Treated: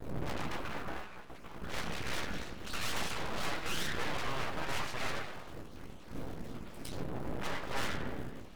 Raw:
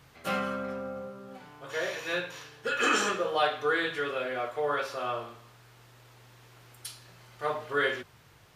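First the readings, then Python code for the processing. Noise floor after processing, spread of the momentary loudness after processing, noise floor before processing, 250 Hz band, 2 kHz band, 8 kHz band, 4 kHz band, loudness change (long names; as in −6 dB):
−48 dBFS, 12 LU, −58 dBFS, −3.0 dB, −8.0 dB, −3.5 dB, −4.0 dB, −8.5 dB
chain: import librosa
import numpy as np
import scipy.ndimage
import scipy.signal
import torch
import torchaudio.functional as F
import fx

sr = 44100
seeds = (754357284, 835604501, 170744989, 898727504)

y = fx.spec_dropout(x, sr, seeds[0], share_pct=39)
y = fx.dmg_wind(y, sr, seeds[1], corner_hz=110.0, level_db=-31.0)
y = fx.env_lowpass_down(y, sr, base_hz=2000.0, full_db=-20.0)
y = fx.high_shelf(y, sr, hz=5600.0, db=-7.5)
y = fx.quant_float(y, sr, bits=4)
y = fx.tube_stage(y, sr, drive_db=33.0, bias=0.6)
y = fx.low_shelf(y, sr, hz=130.0, db=-11.0)
y = fx.clip_asym(y, sr, top_db=-42.0, bottom_db=-34.0)
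y = fx.room_early_taps(y, sr, ms=(16, 30), db=(-7.0, -10.0))
y = fx.rev_spring(y, sr, rt60_s=1.1, pass_ms=(47, 56), chirp_ms=60, drr_db=7.0)
y = np.abs(y)
y = fx.vibrato_shape(y, sr, shape='square', rate_hz=4.2, depth_cents=100.0)
y = F.gain(torch.from_numpy(y), 6.0).numpy()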